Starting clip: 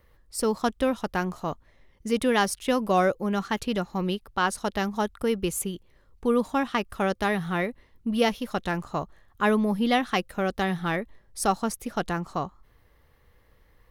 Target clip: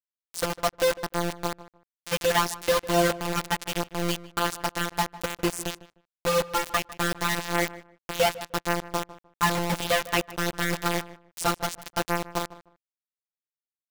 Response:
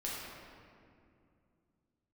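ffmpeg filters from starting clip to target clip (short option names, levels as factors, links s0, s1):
-filter_complex "[0:a]lowpass=8100,equalizer=f=87:w=0.32:g=-4.5,afftfilt=real='hypot(re,im)*cos(PI*b)':imag='0':win_size=1024:overlap=0.75,acrusher=bits=4:mix=0:aa=0.000001,asplit=2[s0][s1];[s1]adelay=152,lowpass=f=1900:p=1,volume=0.15,asplit=2[s2][s3];[s3]adelay=152,lowpass=f=1900:p=1,volume=0.21[s4];[s0][s2][s4]amix=inputs=3:normalize=0,volume=1.68"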